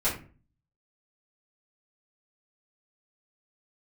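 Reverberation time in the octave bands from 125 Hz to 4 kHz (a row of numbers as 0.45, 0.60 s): 0.65, 0.55, 0.45, 0.35, 0.35, 0.25 s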